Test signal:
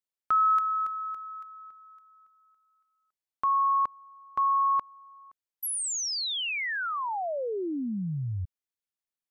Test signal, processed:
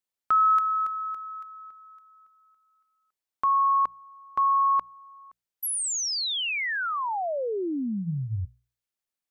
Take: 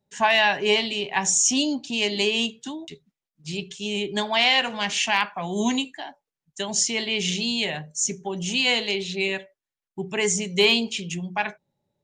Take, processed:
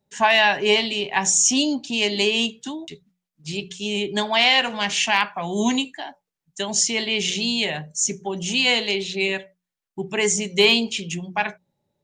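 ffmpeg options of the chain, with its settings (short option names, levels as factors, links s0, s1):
-af "bandreject=f=60:t=h:w=6,bandreject=f=120:t=h:w=6,bandreject=f=180:t=h:w=6,volume=1.33"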